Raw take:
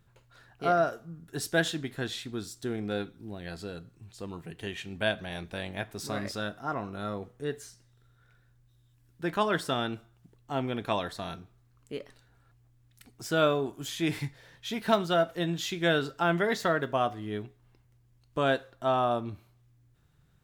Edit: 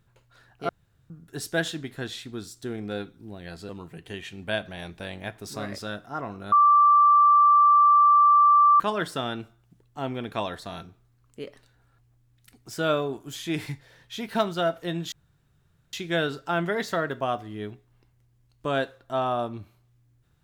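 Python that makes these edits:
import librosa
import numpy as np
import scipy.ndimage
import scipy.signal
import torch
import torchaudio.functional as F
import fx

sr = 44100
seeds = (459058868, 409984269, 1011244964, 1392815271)

y = fx.edit(x, sr, fx.room_tone_fill(start_s=0.69, length_s=0.41),
    fx.cut(start_s=3.69, length_s=0.53),
    fx.bleep(start_s=7.05, length_s=2.28, hz=1170.0, db=-13.5),
    fx.insert_room_tone(at_s=15.65, length_s=0.81), tone=tone)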